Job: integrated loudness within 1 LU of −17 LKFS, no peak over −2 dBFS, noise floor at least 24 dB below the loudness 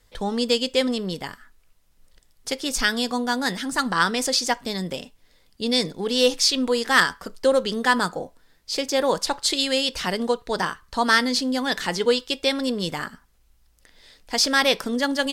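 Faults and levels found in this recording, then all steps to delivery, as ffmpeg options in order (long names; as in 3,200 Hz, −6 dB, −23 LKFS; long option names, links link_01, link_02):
integrated loudness −22.5 LKFS; sample peak −5.5 dBFS; target loudness −17.0 LKFS
→ -af "volume=5.5dB,alimiter=limit=-2dB:level=0:latency=1"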